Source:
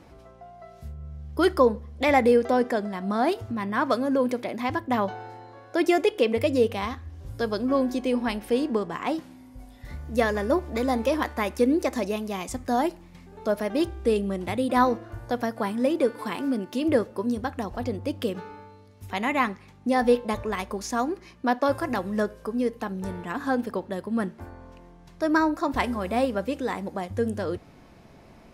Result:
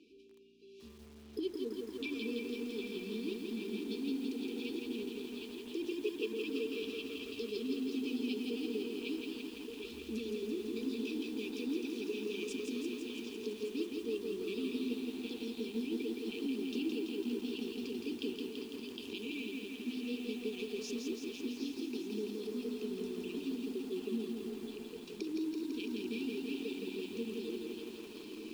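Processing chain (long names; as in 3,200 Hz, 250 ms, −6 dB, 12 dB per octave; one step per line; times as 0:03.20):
camcorder AGC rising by 10 dB per second
linear-phase brick-wall band-stop 460–2,300 Hz
three-way crossover with the lows and the highs turned down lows −20 dB, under 320 Hz, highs −17 dB, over 4,900 Hz
echo through a band-pass that steps 760 ms, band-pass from 3,700 Hz, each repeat −1.4 octaves, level −6 dB
downward compressor 2 to 1, threshold −41 dBFS, peak gain reduction 12 dB
low shelf with overshoot 180 Hz −7.5 dB, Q 3
mains-hum notches 50/100/150/200/250/300/350 Hz
echo through a band-pass that steps 388 ms, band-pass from 1,300 Hz, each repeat 1.4 octaves, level −6.5 dB
feedback echo at a low word length 167 ms, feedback 80%, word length 9 bits, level −3.5 dB
level −4 dB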